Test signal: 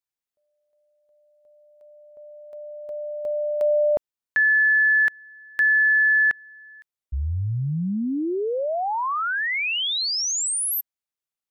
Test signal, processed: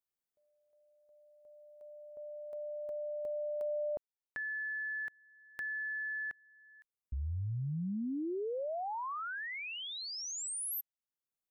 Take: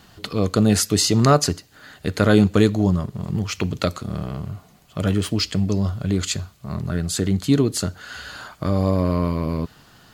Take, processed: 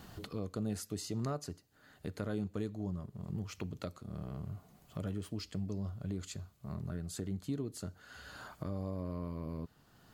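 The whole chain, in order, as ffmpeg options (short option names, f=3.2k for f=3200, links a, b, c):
-af "acompressor=threshold=-37dB:ratio=3:attack=4.3:release=723:detection=rms,equalizer=f=3.4k:t=o:w=3:g=-6.5,volume=-1dB"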